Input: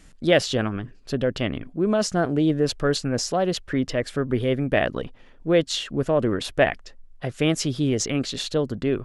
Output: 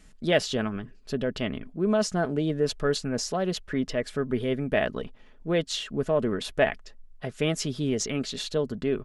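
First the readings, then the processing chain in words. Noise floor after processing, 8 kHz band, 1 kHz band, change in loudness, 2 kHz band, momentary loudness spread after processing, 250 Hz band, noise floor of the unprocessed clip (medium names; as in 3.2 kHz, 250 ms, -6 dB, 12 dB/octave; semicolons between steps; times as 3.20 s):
-52 dBFS, -4.0 dB, -4.5 dB, -4.0 dB, -4.0 dB, 8 LU, -4.5 dB, -49 dBFS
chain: comb 4.7 ms, depth 36%; trim -4.5 dB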